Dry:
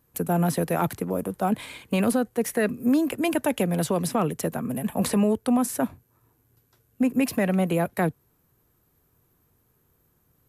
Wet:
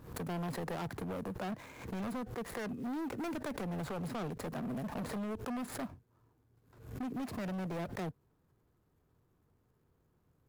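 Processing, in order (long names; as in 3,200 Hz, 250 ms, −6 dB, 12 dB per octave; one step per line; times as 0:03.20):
running median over 15 samples
downward compressor, threshold −23 dBFS, peak gain reduction 6 dB
gain into a clipping stage and back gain 31 dB
background raised ahead of every attack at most 88 dB per second
level −5 dB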